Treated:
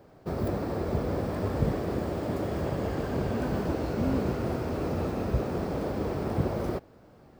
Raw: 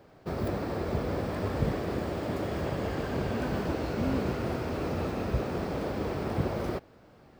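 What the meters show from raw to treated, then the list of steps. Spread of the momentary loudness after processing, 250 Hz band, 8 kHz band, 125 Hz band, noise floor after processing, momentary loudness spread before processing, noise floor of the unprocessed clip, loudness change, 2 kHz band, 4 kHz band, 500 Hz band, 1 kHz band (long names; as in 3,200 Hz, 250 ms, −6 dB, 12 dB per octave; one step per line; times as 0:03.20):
3 LU, +2.0 dB, 0.0 dB, +2.0 dB, −55 dBFS, 3 LU, −56 dBFS, +1.5 dB, −2.5 dB, −2.5 dB, +1.5 dB, 0.0 dB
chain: parametric band 2,700 Hz −5.5 dB 2.3 octaves
level +2 dB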